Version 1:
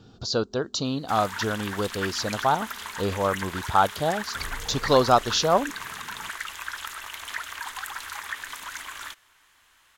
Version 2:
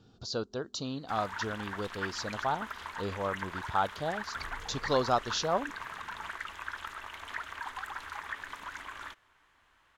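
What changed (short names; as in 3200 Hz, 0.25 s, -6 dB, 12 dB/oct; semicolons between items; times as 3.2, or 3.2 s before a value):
speech -9.0 dB; background: add LPF 1100 Hz 6 dB/oct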